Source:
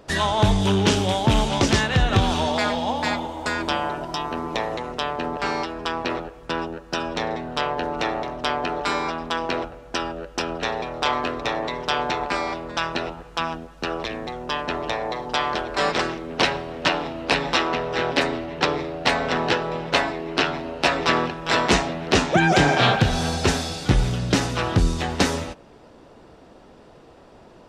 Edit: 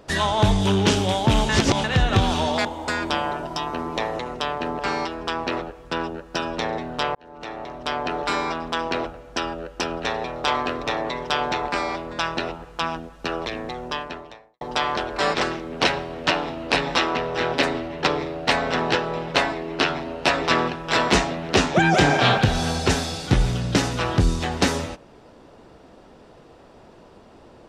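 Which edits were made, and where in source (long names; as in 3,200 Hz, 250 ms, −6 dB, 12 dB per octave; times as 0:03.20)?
0:01.49–0:01.84: reverse
0:02.65–0:03.23: remove
0:07.73–0:08.73: fade in
0:14.45–0:15.19: fade out quadratic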